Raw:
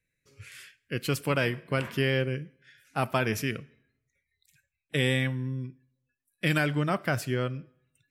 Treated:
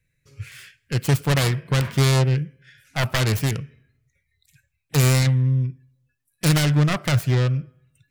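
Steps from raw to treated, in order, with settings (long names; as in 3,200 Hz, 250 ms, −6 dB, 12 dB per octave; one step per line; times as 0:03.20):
phase distortion by the signal itself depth 0.67 ms
low shelf with overshoot 180 Hz +7 dB, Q 1.5
level +5.5 dB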